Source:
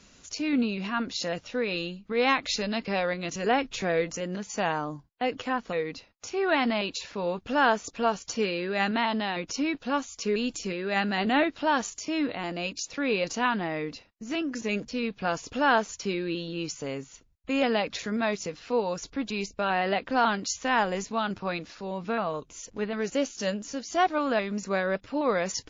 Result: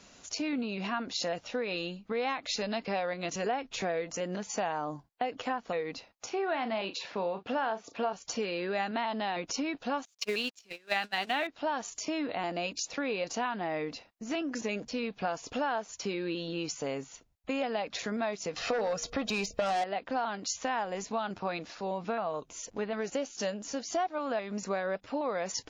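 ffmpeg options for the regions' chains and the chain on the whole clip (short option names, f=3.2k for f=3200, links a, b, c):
-filter_complex "[0:a]asettb=1/sr,asplit=3[a][b][c];[a]atrim=end=6.264[d];[b]atrim=start=6.26:end=8.13,asetpts=PTS-STARTPTS,afade=t=in:d=0.004:c=qsin,afade=t=out:st=1.866:d=0.004:c=qsin,highpass=120,lowpass=4.5k,asplit=2[e][f];[f]adelay=36,volume=-11.5dB[g];[e][g]amix=inputs=2:normalize=0,atrim=end_sample=82467[h];[c]atrim=start=8.126[i];[d][h]acrossfade=d=0.004:c1=hsin:c2=qsin[j];[j][i]acrossfade=d=0.004:c1=qsin:c2=hsin,asettb=1/sr,asplit=3[k][l][m];[k]atrim=end=10.054[n];[l]atrim=start=10.05:end=11.47,asetpts=PTS-STARTPTS,afade=t=in:d=0.004:c=qsin,afade=t=out:st=1.416:d=0.004:c=qsin,acrusher=bits=6:mix=0:aa=0.5,equalizer=f=3.4k:w=0.35:g=12.5,agate=range=-34dB:threshold=-24dB:ratio=16:release=100:detection=peak[o];[m]atrim=start=11.466[p];[n][o]acrossfade=d=0.004:c1=hsin:c2=qsin[q];[q][p]acrossfade=d=0.004:c1=qsin:c2=hsin,asettb=1/sr,asplit=3[r][s][t];[r]atrim=end=18.564[u];[s]atrim=start=18.56:end=19.84,asetpts=PTS-STARTPTS,afade=t=in:d=0.004:c=qsin,afade=t=out:st=1.276:d=0.004:c=qsin,aecho=1:1:1.6:0.45,atrim=end_sample=56448,bandreject=f=237.9:t=h:w=4,bandreject=f=475.8:t=h:w=4,aeval=exprs='0.168*sin(PI/2*2.24*val(0)/0.168)':c=same[v];[t]atrim=start=19.836[w];[u][v]acrossfade=d=0.004:c1=hsin:c2=qsin[x];[x][w]acrossfade=d=0.004:c1=qsin:c2=hsin,equalizer=f=730:w=1.8:g=6.5,acompressor=threshold=-29dB:ratio=6,lowshelf=f=120:g=-7.5"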